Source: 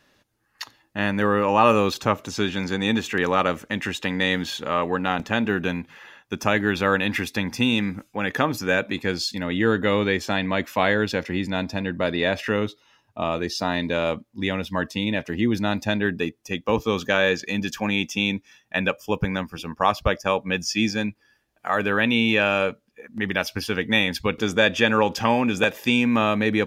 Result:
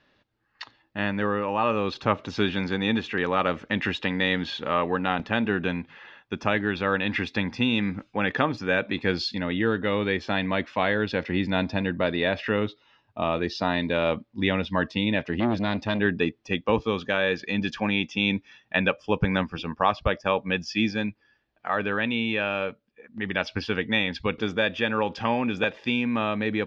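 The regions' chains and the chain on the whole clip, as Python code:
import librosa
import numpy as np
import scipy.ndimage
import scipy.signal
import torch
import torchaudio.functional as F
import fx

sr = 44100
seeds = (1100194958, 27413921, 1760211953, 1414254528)

y = fx.chain(x, sr, fx.median_filter(points=3),
    fx.transformer_sat(knee_hz=940.0), at=(15.4, 15.99))
y = scipy.signal.sosfilt(scipy.signal.butter(4, 4400.0, 'lowpass', fs=sr, output='sos'), y)
y = fx.rider(y, sr, range_db=10, speed_s=0.5)
y = F.gain(torch.from_numpy(y), -2.5).numpy()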